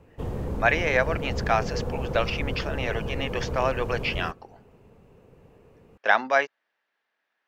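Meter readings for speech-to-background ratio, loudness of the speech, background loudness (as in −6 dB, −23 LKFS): 6.0 dB, −26.5 LKFS, −32.5 LKFS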